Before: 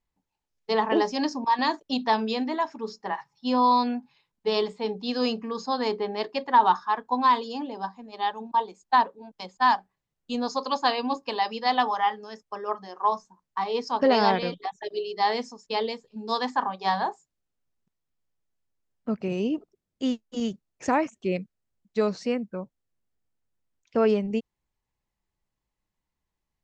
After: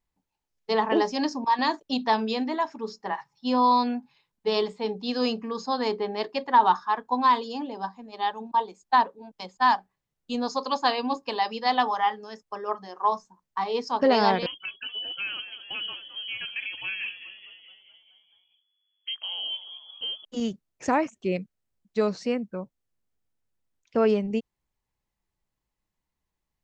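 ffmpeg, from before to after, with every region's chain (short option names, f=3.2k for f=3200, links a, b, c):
-filter_complex "[0:a]asettb=1/sr,asplit=3[a][b][c];[a]atrim=end=14.464[d];[b]atrim=start=14.46:end=20.25,asetpts=PTS-STARTPTS,afade=t=in:d=0.004:c=qsin,afade=t=out:st=5.786:d=0.004:c=qsin,acompressor=threshold=-31dB:ratio=3:attack=3.2:release=140:knee=1:detection=peak,asplit=8[e][f][g][h][i][j][k][l];[f]adelay=214,afreqshift=-100,volume=-12dB[m];[g]adelay=428,afreqshift=-200,volume=-16dB[n];[h]adelay=642,afreqshift=-300,volume=-20dB[o];[i]adelay=856,afreqshift=-400,volume=-24dB[p];[j]adelay=1070,afreqshift=-500,volume=-28.1dB[q];[k]adelay=1284,afreqshift=-600,volume=-32.1dB[r];[l]adelay=1498,afreqshift=-700,volume=-36.1dB[s];[e][m][n][o][p][q][r][s]amix=inputs=8:normalize=0,atrim=end_sample=255339,lowpass=f=2.9k:t=q:w=0.5098,lowpass=f=2.9k:t=q:w=0.6013,lowpass=f=2.9k:t=q:w=0.9,lowpass=f=2.9k:t=q:w=2.563,afreqshift=-3400[t];[c]atrim=start=20.246[u];[d][t]acrossfade=d=0.004:c1=hsin:c2=qsin[v];[v][u]acrossfade=d=0.004:c1=qsin:c2=hsin"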